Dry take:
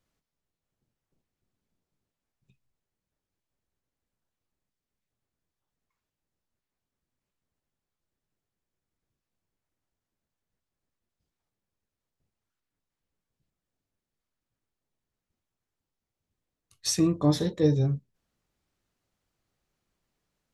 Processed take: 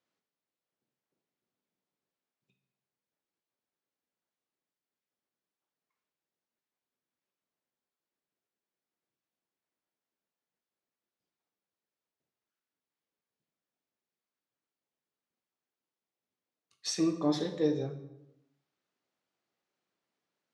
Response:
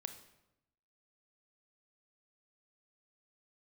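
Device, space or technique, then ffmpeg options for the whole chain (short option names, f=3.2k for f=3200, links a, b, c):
supermarket ceiling speaker: -filter_complex "[0:a]highpass=270,lowpass=5.7k[a];[1:a]atrim=start_sample=2205[b];[a][b]afir=irnorm=-1:irlink=0"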